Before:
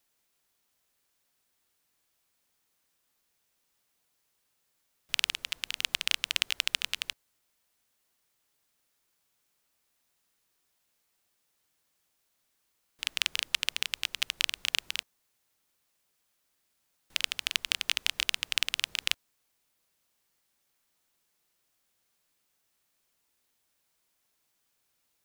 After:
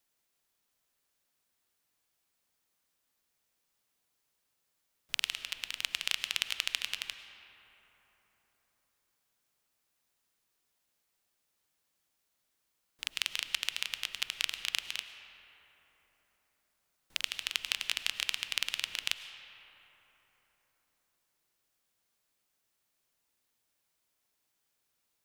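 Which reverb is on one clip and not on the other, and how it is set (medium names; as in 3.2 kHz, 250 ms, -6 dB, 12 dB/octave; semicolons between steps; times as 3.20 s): algorithmic reverb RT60 4.4 s, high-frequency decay 0.4×, pre-delay 65 ms, DRR 9.5 dB; trim -4 dB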